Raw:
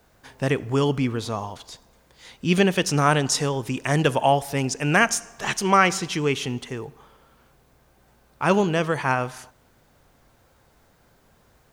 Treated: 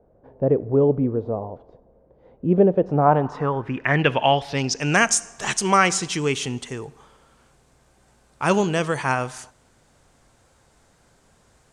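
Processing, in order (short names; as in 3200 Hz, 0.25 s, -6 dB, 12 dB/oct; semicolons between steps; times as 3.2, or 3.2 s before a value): low-pass sweep 540 Hz -> 8300 Hz, 2.75–5.13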